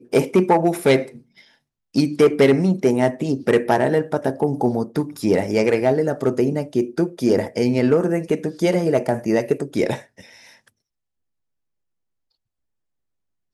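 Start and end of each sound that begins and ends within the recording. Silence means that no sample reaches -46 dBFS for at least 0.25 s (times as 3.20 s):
1.94–10.68 s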